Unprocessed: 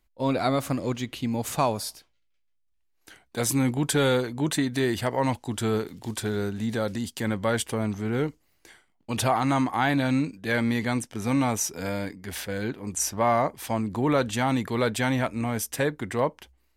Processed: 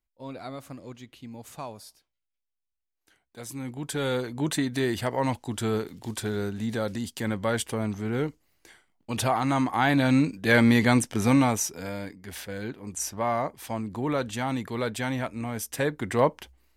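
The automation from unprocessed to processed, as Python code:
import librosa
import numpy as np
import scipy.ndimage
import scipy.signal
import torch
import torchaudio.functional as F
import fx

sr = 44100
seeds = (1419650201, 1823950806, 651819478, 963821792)

y = fx.gain(x, sr, db=fx.line((3.48, -14.0), (4.36, -1.5), (9.5, -1.5), (10.59, 6.0), (11.21, 6.0), (11.86, -4.5), (15.54, -4.5), (16.26, 3.5)))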